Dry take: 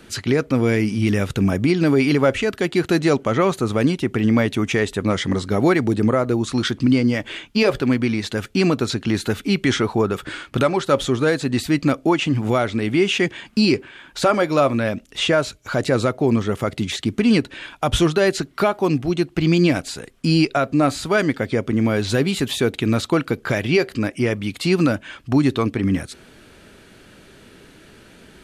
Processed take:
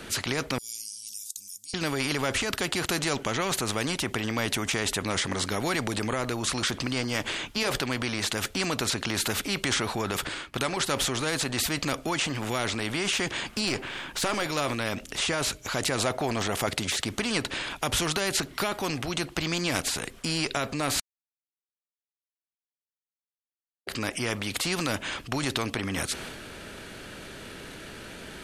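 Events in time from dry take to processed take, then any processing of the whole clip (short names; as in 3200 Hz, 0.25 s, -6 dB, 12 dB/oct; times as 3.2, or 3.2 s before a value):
0.58–1.74 inverse Chebyshev high-pass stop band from 1900 Hz, stop band 60 dB
10.27–10.77 upward expander, over -38 dBFS
13.67–14.46 half-wave gain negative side -3 dB
15.98–16.67 bell 700 Hz +14 dB 0.56 oct
21–23.87 mute
whole clip: transient shaper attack +1 dB, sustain +6 dB; spectral compressor 2:1; gain -5 dB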